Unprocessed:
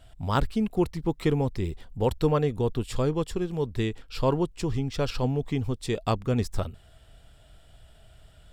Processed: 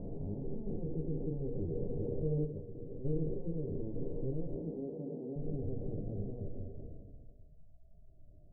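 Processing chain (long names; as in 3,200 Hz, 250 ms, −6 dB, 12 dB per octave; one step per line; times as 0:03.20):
spectrum smeared in time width 1,160 ms
0:02.45–0:03.05: noise gate −28 dBFS, range −7 dB
mains-hum notches 60/120/180/240/300/360/420 Hz
reverb reduction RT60 1.6 s
0:04.53–0:05.36: elliptic high-pass filter 160 Hz
gate on every frequency bin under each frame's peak −25 dB strong
Butterworth low-pass 620 Hz 36 dB per octave
rectangular room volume 39 cubic metres, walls mixed, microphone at 0.38 metres
level −3 dB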